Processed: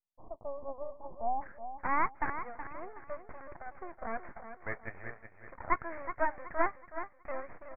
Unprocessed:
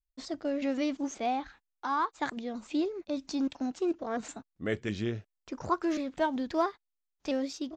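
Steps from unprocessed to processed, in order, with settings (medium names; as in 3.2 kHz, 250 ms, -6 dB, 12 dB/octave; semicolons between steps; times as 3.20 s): high-pass 630 Hz 24 dB/octave; half-wave rectifier; steep low-pass 1.1 kHz 96 dB/octave, from 1.41 s 2.2 kHz; feedback delay 372 ms, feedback 36%, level -10 dB; trim +5 dB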